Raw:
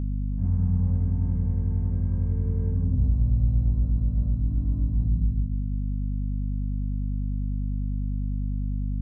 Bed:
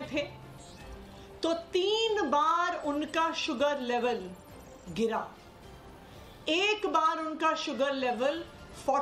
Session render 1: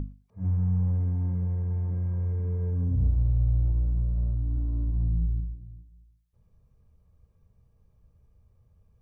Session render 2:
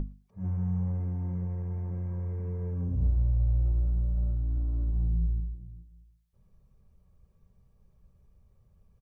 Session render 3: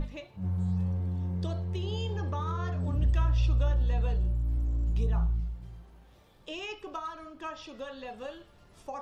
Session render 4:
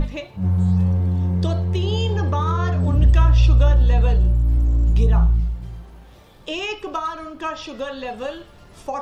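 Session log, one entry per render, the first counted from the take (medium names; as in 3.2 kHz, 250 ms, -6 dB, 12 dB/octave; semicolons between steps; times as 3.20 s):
hum notches 50/100/150/200/250 Hz
comb 5.3 ms, depth 38%; dynamic bell 160 Hz, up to -4 dB, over -41 dBFS, Q 1.1
add bed -11.5 dB
trim +12 dB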